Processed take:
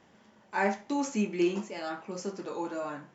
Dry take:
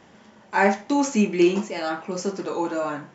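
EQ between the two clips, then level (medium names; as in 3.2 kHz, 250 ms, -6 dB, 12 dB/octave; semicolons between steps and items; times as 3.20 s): flat; -9.0 dB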